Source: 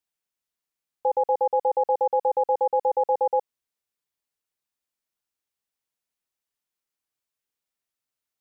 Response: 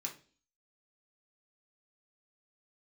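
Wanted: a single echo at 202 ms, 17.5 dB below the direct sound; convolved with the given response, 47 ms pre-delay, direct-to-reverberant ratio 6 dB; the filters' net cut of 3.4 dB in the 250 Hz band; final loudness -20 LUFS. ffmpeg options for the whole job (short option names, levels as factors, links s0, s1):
-filter_complex "[0:a]equalizer=f=250:t=o:g=-6.5,aecho=1:1:202:0.133,asplit=2[s0][s1];[1:a]atrim=start_sample=2205,adelay=47[s2];[s1][s2]afir=irnorm=-1:irlink=0,volume=0.562[s3];[s0][s3]amix=inputs=2:normalize=0,volume=1.33"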